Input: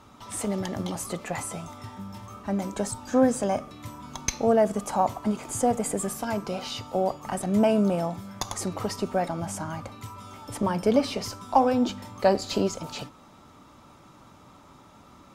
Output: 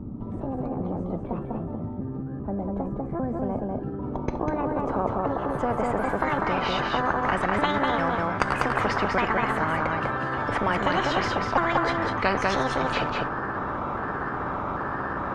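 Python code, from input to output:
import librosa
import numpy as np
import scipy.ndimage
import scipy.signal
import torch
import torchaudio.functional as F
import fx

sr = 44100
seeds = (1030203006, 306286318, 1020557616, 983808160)

y = fx.pitch_trill(x, sr, semitones=5.0, every_ms=399)
y = fx.filter_sweep_lowpass(y, sr, from_hz=210.0, to_hz=1200.0, start_s=3.36, end_s=6.89, q=2.9)
y = y + 10.0 ** (-4.5 / 20.0) * np.pad(y, (int(197 * sr / 1000.0), 0))[:len(y)]
y = fx.spectral_comp(y, sr, ratio=4.0)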